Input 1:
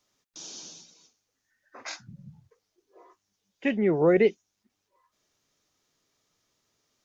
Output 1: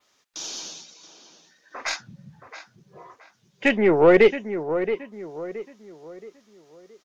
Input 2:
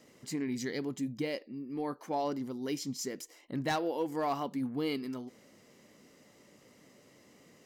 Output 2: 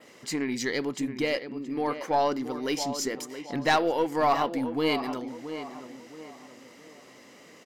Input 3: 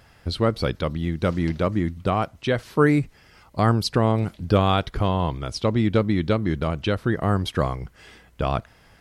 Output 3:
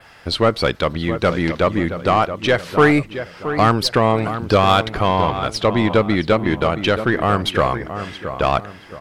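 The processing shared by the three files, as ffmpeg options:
-filter_complex "[0:a]asplit=2[s0][s1];[s1]highpass=f=720:p=1,volume=5.01,asoftclip=type=tanh:threshold=0.562[s2];[s0][s2]amix=inputs=2:normalize=0,lowpass=f=4600:p=1,volume=0.501,asplit=2[s3][s4];[s4]adelay=673,lowpass=f=2100:p=1,volume=0.316,asplit=2[s5][s6];[s6]adelay=673,lowpass=f=2100:p=1,volume=0.39,asplit=2[s7][s8];[s8]adelay=673,lowpass=f=2100:p=1,volume=0.39,asplit=2[s9][s10];[s10]adelay=673,lowpass=f=2100:p=1,volume=0.39[s11];[s3][s5][s7][s9][s11]amix=inputs=5:normalize=0,aeval=exprs='0.596*(cos(1*acos(clip(val(0)/0.596,-1,1)))-cos(1*PI/2))+0.0188*(cos(8*acos(clip(val(0)/0.596,-1,1)))-cos(8*PI/2))':c=same,adynamicequalizer=threshold=0.00501:dfrequency=5800:dqfactor=1.9:tfrequency=5800:tqfactor=1.9:attack=5:release=100:ratio=0.375:range=2:mode=cutabove:tftype=bell,volume=1.41"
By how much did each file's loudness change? 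+1.5 LU, +7.5 LU, +5.0 LU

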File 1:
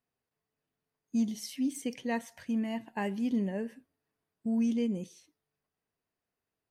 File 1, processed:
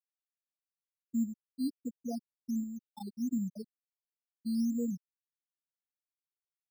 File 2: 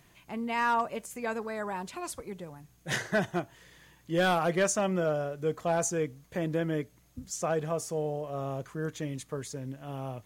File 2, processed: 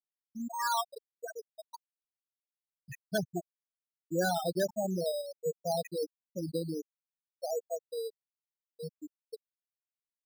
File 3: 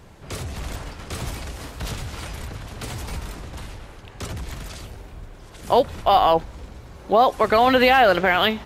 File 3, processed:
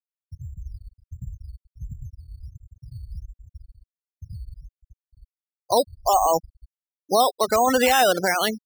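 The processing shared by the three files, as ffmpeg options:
-af "afftfilt=real='re*gte(hypot(re,im),0.2)':imag='im*gte(hypot(re,im),0.2)':win_size=1024:overlap=0.75,acrusher=samples=8:mix=1:aa=0.000001:lfo=1:lforange=4.8:lforate=1.4,volume=0.75"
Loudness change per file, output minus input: -3.5 LU, -4.0 LU, -1.0 LU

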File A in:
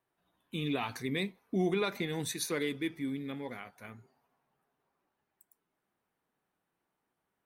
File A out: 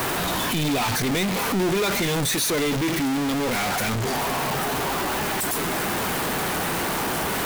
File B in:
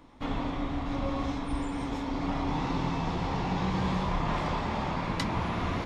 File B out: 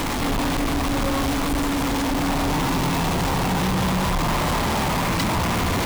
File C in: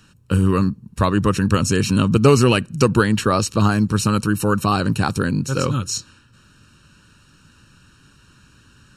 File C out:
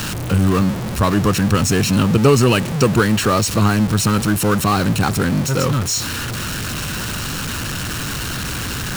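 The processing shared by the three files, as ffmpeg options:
-af "aeval=exprs='val(0)+0.5*0.133*sgn(val(0))':c=same,volume=0.891"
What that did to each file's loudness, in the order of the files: +11.5 LU, +9.0 LU, +1.0 LU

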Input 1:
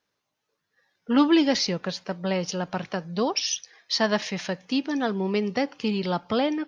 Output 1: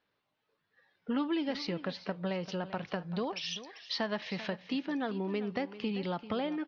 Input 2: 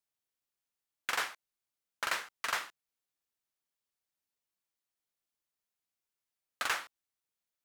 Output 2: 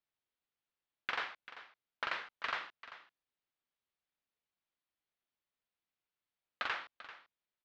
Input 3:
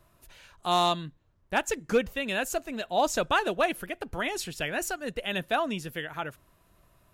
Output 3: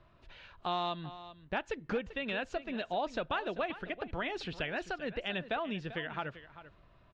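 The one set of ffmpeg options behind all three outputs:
-filter_complex "[0:a]lowpass=f=4000:w=0.5412,lowpass=f=4000:w=1.3066,acompressor=threshold=0.02:ratio=3,asplit=2[s0][s1];[s1]aecho=0:1:391:0.188[s2];[s0][s2]amix=inputs=2:normalize=0"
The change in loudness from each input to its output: -10.0 LU, -4.5 LU, -7.5 LU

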